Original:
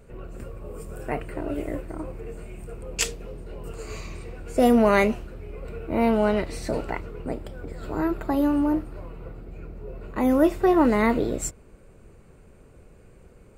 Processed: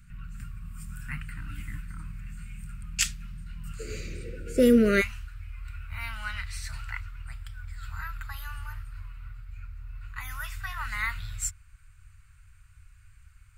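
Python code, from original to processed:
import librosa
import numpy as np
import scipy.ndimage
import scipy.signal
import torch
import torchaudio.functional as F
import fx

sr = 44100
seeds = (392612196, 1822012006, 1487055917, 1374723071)

y = fx.cheby1_bandstop(x, sr, low_hz=fx.steps((0.0, 180.0), (3.79, 530.0), (5.0, 100.0)), high_hz=1400.0, order=3)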